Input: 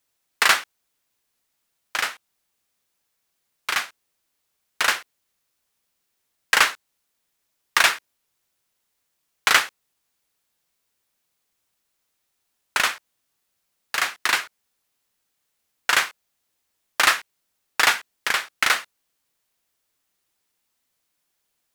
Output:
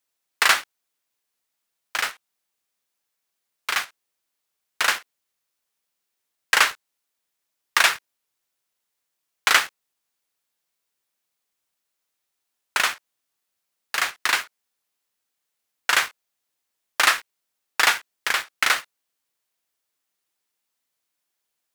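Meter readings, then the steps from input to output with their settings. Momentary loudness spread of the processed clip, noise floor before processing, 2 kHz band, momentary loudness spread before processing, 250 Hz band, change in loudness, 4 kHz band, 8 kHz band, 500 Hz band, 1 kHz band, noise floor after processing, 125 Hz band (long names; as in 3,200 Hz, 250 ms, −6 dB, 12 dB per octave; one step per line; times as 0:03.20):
12 LU, −76 dBFS, −0.5 dB, 12 LU, −2.5 dB, −0.5 dB, −0.5 dB, 0.0 dB, −1.0 dB, −0.5 dB, −80 dBFS, can't be measured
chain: low-shelf EQ 190 Hz −8.5 dB
in parallel at −4 dB: bit reduction 5 bits
on the sum: level −4.5 dB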